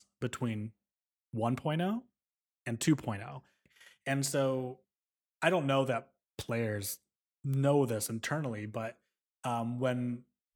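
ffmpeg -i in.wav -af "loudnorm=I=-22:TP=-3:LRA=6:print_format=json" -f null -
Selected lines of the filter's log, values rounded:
"input_i" : "-34.0",
"input_tp" : "-12.8",
"input_lra" : "2.8",
"input_thresh" : "-44.6",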